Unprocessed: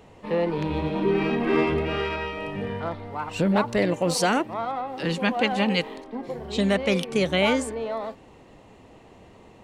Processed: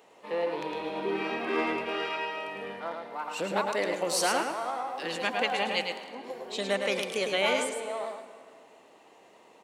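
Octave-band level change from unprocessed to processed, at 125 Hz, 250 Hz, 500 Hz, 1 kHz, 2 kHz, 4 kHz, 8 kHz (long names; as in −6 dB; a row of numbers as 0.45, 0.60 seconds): −18.5, −12.5, −5.5, −3.0, −2.5, −2.0, 0.0 decibels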